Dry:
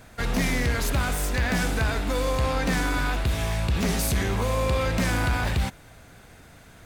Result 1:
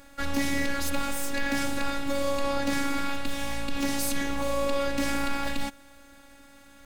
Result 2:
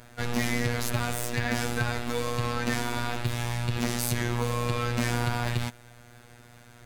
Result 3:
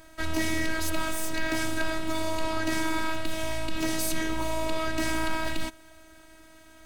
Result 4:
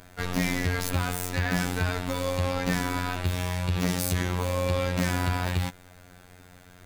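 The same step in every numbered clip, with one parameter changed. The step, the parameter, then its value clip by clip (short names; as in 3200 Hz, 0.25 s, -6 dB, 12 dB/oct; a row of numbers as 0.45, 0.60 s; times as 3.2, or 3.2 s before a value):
robotiser, frequency: 280, 120, 320, 90 Hz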